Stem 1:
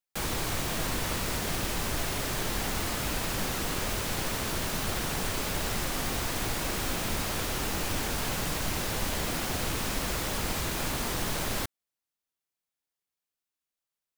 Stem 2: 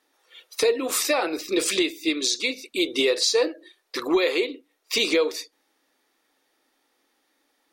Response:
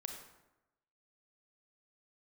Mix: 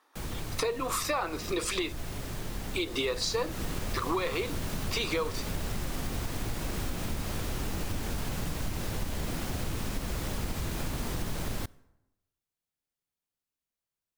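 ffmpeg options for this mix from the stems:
-filter_complex "[0:a]lowshelf=f=330:g=10,volume=-4dB,afade=t=in:st=2.88:d=0.76:silence=0.446684,asplit=2[a][b];[b]volume=-18.5dB[c];[1:a]equalizer=f=1.1k:t=o:w=0.88:g=14,volume=-2.5dB,asplit=3[d][e][f];[d]atrim=end=1.93,asetpts=PTS-STARTPTS,afade=t=out:st=1.926:d=0.004:c=hsin[g];[e]atrim=start=1.93:end=2.72,asetpts=PTS-STARTPTS,volume=0[h];[f]atrim=start=2.72,asetpts=PTS-STARTPTS,afade=t=in:d=0.004:c=hsin[i];[g][h][i]concat=n=3:v=0:a=1[j];[2:a]atrim=start_sample=2205[k];[c][k]afir=irnorm=-1:irlink=0[l];[a][j][l]amix=inputs=3:normalize=0,acompressor=threshold=-30dB:ratio=3"

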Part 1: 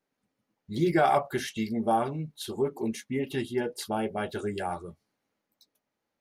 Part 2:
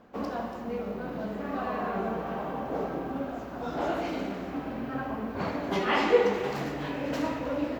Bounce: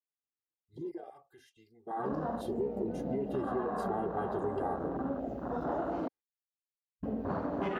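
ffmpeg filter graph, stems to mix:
-filter_complex "[0:a]aecho=1:1:2.5:0.84,alimiter=limit=-19dB:level=0:latency=1:release=11,volume=-1dB,afade=t=in:st=1.87:d=0.36:silence=0.237137[a];[1:a]adelay=1900,volume=1.5dB,asplit=3[b][c][d];[b]atrim=end=6.08,asetpts=PTS-STARTPTS,afade=t=out:st=6.076:d=0.004:c=hsin[e];[c]atrim=start=6.08:end=7.03,asetpts=PTS-STARTPTS,volume=0[f];[d]atrim=start=7.03,asetpts=PTS-STARTPTS,afade=t=in:d=0.004:c=hsin[g];[e][f][g]concat=n=3:v=0:a=1[h];[a][h]amix=inputs=2:normalize=0,afwtdn=0.0282,bandreject=f=2.3k:w=14,acompressor=threshold=-31dB:ratio=4"

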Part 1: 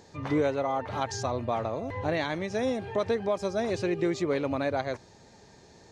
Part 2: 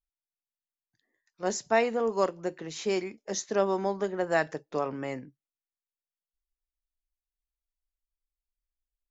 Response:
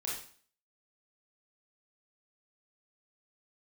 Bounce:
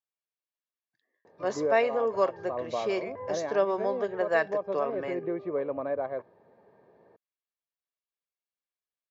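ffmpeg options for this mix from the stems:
-filter_complex "[0:a]lowpass=1.1k,adelay=1250,volume=-2dB[a];[1:a]volume=-0.5dB,asplit=2[b][c];[c]apad=whole_len=315813[d];[a][d]sidechaincompress=threshold=-29dB:ratio=8:attack=16:release=172[e];[e][b]amix=inputs=2:normalize=0,highpass=250,lowpass=3.7k,aecho=1:1:1.8:0.37"

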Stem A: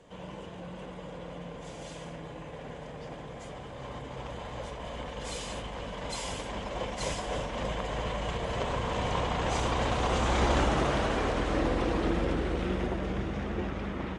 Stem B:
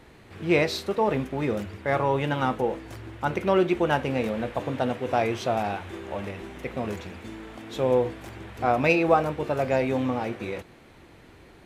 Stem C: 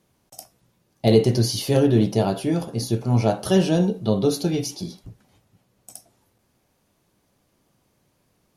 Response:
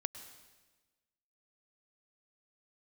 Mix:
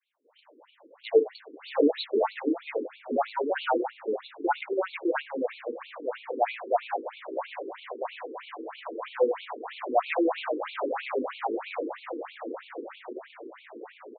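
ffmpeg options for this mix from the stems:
-filter_complex "[0:a]adelay=250,volume=-3dB[a];[1:a]asoftclip=type=tanh:threshold=-17dB,adelay=1250,volume=-2dB,asplit=2[b][c];[c]volume=-7.5dB[d];[2:a]volume=-5.5dB,asplit=3[e][f][g];[f]volume=-15.5dB[h];[g]apad=whole_len=636522[i];[a][i]sidechaincompress=threshold=-39dB:ratio=8:attack=5.4:release=1460[j];[3:a]atrim=start_sample=2205[k];[d][h]amix=inputs=2:normalize=0[l];[l][k]afir=irnorm=-1:irlink=0[m];[j][b][e][m]amix=inputs=4:normalize=0,adynamicequalizer=threshold=0.01:dfrequency=780:dqfactor=0.89:tfrequency=780:tqfactor=0.89:attack=5:release=100:ratio=0.375:range=2.5:mode=boostabove:tftype=bell,afftfilt=real='re*between(b*sr/1024,330*pow(3200/330,0.5+0.5*sin(2*PI*3.1*pts/sr))/1.41,330*pow(3200/330,0.5+0.5*sin(2*PI*3.1*pts/sr))*1.41)':imag='im*between(b*sr/1024,330*pow(3200/330,0.5+0.5*sin(2*PI*3.1*pts/sr))/1.41,330*pow(3200/330,0.5+0.5*sin(2*PI*3.1*pts/sr))*1.41)':win_size=1024:overlap=0.75"

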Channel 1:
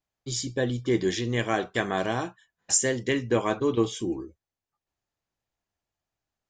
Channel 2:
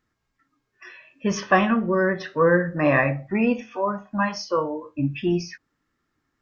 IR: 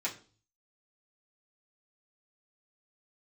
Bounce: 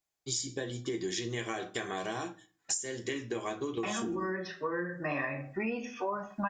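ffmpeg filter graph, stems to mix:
-filter_complex "[0:a]acompressor=threshold=-26dB:ratio=6,volume=-6.5dB,asplit=3[a][b][c];[b]volume=-4.5dB[d];[1:a]adelay=2250,volume=-2dB,asplit=3[e][f][g];[e]atrim=end=3.21,asetpts=PTS-STARTPTS,afade=t=out:st=3.206:d=0.004:c=hsin[h];[f]atrim=start=3.21:end=3.83,asetpts=PTS-STARTPTS,volume=0[i];[g]atrim=start=3.83,asetpts=PTS-STARTPTS,afade=t=in:d=0.004:c=hsin[j];[h][i][j]concat=n=3:v=0:a=1,asplit=2[k][l];[l]volume=-11dB[m];[c]apad=whole_len=381979[n];[k][n]sidechaincompress=threshold=-55dB:ratio=8:attack=16:release=1400[o];[2:a]atrim=start_sample=2205[p];[d][m]amix=inputs=2:normalize=0[q];[q][p]afir=irnorm=-1:irlink=0[r];[a][o][r]amix=inputs=3:normalize=0,bass=f=250:g=-3,treble=f=4k:g=7,acompressor=threshold=-30dB:ratio=10"

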